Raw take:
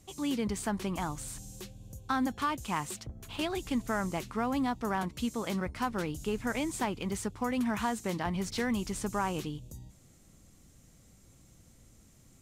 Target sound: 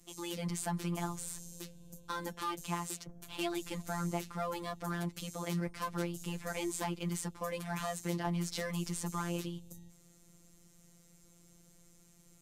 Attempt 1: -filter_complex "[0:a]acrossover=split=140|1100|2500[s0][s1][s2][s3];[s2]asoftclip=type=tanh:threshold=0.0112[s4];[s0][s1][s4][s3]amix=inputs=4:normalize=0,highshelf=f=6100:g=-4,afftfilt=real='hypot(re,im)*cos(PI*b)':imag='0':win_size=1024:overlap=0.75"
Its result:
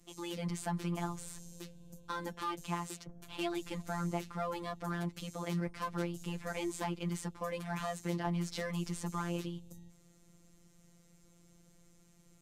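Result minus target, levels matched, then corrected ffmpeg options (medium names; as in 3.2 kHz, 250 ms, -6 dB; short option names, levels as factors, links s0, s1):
8 kHz band -5.0 dB
-filter_complex "[0:a]acrossover=split=140|1100|2500[s0][s1][s2][s3];[s2]asoftclip=type=tanh:threshold=0.0112[s4];[s0][s1][s4][s3]amix=inputs=4:normalize=0,highshelf=f=6100:g=4.5,afftfilt=real='hypot(re,im)*cos(PI*b)':imag='0':win_size=1024:overlap=0.75"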